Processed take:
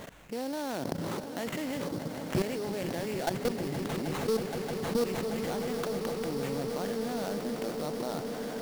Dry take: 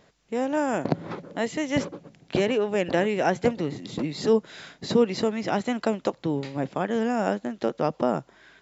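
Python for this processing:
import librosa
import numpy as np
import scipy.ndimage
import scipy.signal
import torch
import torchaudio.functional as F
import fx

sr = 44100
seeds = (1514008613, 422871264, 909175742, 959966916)

y = fx.peak_eq(x, sr, hz=98.0, db=11.5, octaves=2.3, at=(1.9, 2.42))
y = fx.level_steps(y, sr, step_db=20)
y = fx.sample_hold(y, sr, seeds[0], rate_hz=5000.0, jitter_pct=20)
y = 10.0 ** (-19.5 / 20.0) * np.tanh(y / 10.0 ** (-19.5 / 20.0))
y = fx.echo_swell(y, sr, ms=157, loudest=8, wet_db=-17.0)
y = fx.env_flatten(y, sr, amount_pct=50)
y = y * librosa.db_to_amplitude(-3.0)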